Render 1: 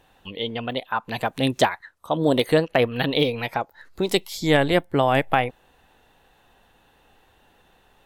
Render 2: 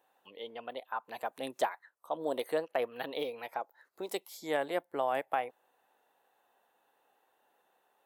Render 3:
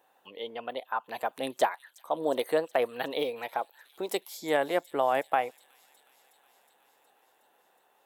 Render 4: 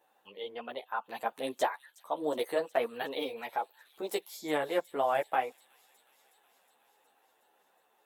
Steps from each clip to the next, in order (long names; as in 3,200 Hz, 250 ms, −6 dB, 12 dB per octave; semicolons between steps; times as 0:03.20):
high-pass filter 610 Hz 12 dB per octave; parametric band 3,500 Hz −13 dB 2.9 octaves; level −5.5 dB
delay with a high-pass on its return 366 ms, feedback 73%, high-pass 5,200 Hz, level −13.5 dB; level +5.5 dB
string-ensemble chorus